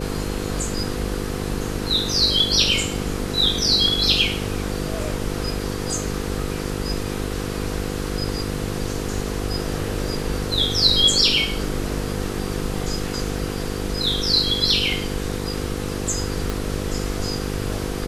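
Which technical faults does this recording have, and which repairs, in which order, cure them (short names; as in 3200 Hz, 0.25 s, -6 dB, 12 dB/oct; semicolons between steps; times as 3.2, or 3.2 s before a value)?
buzz 50 Hz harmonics 10 -28 dBFS
16.5 pop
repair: de-click; de-hum 50 Hz, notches 10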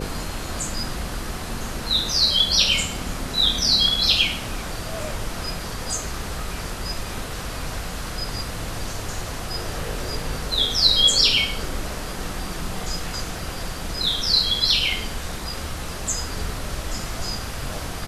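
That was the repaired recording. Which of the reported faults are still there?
16.5 pop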